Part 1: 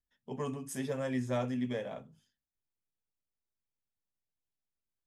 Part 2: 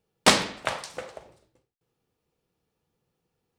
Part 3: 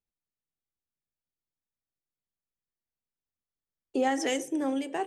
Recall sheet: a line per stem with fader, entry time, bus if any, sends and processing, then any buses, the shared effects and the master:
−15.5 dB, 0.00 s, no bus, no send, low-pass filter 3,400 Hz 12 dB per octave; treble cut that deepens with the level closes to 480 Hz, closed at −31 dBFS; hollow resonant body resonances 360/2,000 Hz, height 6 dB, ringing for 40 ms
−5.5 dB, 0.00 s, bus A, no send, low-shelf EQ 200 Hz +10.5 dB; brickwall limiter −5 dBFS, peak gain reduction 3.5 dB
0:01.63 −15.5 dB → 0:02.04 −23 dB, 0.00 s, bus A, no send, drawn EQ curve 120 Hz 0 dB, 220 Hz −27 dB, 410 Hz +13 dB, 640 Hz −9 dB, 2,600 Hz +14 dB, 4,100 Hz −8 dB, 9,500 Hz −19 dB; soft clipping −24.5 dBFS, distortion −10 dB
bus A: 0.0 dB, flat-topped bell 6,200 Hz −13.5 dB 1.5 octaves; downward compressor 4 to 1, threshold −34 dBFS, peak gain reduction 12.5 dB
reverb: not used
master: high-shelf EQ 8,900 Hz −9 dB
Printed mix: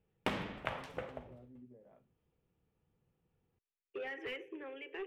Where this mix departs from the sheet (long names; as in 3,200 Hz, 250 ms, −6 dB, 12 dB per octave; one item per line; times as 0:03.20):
stem 1 −15.5 dB → −22.0 dB
stem 3 −15.5 dB → −5.0 dB